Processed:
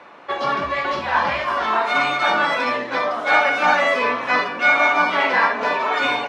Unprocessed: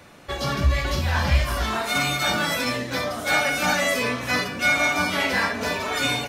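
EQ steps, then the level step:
band-pass filter 350–2,700 Hz
parametric band 1,000 Hz +7 dB 0.66 octaves
+4.5 dB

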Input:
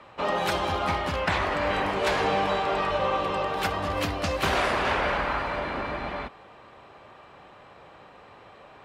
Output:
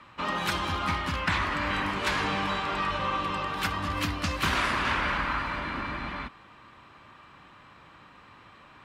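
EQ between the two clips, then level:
flat-topped bell 560 Hz −10.5 dB 1.3 octaves
0.0 dB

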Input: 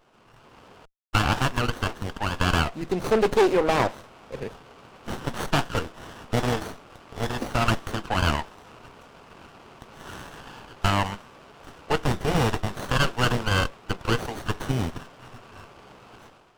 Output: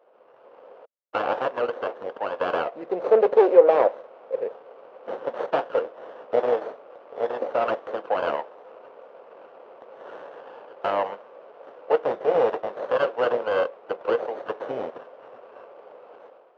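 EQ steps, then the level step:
high-pass with resonance 520 Hz, resonance Q 4.9
head-to-tape spacing loss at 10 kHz 41 dB
0.0 dB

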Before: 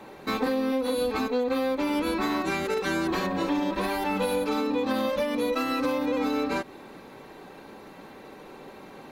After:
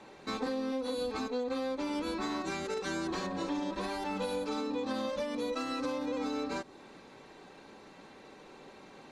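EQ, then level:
dynamic equaliser 2,500 Hz, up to −5 dB, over −48 dBFS, Q 1.1
low-pass filter 8,200 Hz 24 dB per octave
high-shelf EQ 3,300 Hz +8 dB
−8.0 dB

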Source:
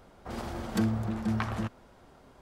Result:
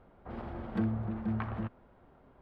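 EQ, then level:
high-frequency loss of the air 500 metres
−3.0 dB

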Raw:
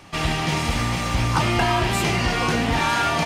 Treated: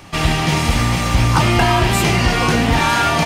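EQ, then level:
low-shelf EQ 180 Hz +3.5 dB
high-shelf EQ 12,000 Hz +6.5 dB
+5.0 dB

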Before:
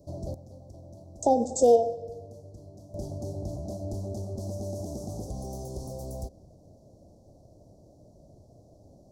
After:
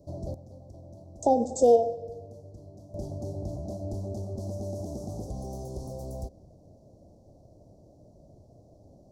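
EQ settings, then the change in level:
high-shelf EQ 4,000 Hz −5.5 dB
0.0 dB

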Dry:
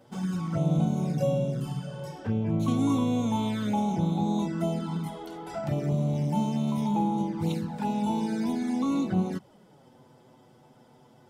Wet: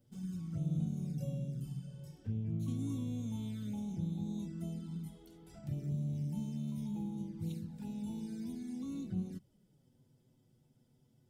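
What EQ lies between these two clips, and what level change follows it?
guitar amp tone stack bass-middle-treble 10-0-1
high-shelf EQ 8,200 Hz +9.5 dB
+4.5 dB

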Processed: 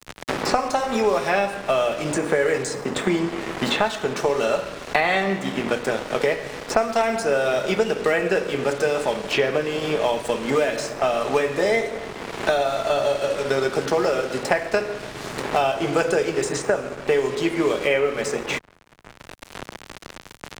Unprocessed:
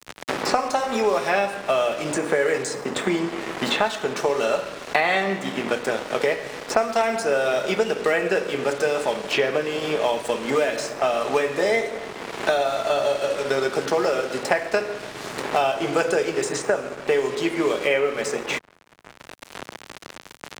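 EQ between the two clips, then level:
low-shelf EQ 130 Hz +10.5 dB
0.0 dB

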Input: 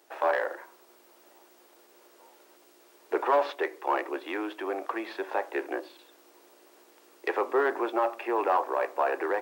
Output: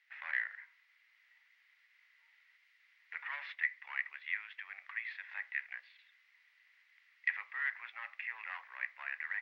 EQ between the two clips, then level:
four-pole ladder high-pass 1,900 Hz, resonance 80%
high-frequency loss of the air 310 metres
high-shelf EQ 3,600 Hz +9.5 dB
+2.5 dB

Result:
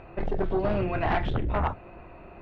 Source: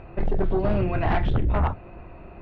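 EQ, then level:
low-shelf EQ 240 Hz −7 dB
0.0 dB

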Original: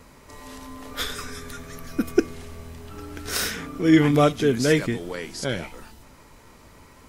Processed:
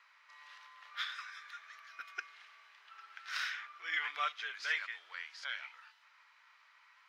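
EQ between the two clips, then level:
high-pass filter 1,300 Hz 24 dB per octave
high-frequency loss of the air 260 metres
−3.5 dB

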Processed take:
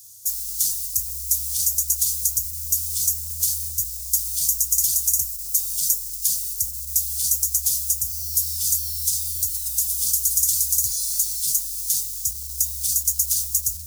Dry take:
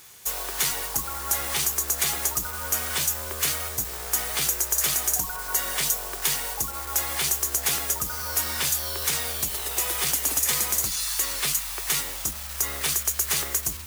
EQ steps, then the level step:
high-pass filter 69 Hz
inverse Chebyshev band-stop filter 410–1,300 Hz, stop band 80 dB
+4.5 dB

